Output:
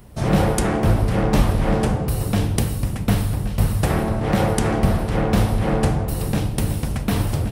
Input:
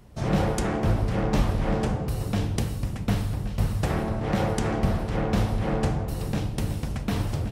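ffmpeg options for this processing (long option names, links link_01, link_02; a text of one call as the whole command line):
ffmpeg -i in.wav -af "aexciter=amount=1.8:drive=7.1:freq=8900,volume=6dB" out.wav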